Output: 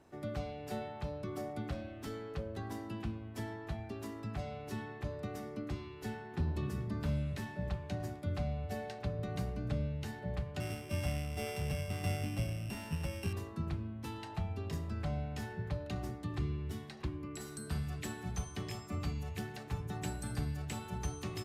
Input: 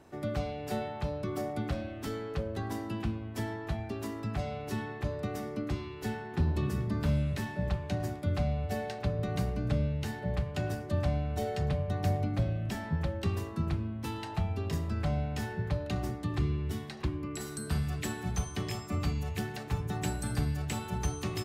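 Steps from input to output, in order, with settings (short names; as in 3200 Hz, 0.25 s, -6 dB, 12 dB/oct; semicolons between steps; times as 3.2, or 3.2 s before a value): 10.6–13.33 sample sorter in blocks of 16 samples; gain -6 dB; Vorbis 128 kbps 32000 Hz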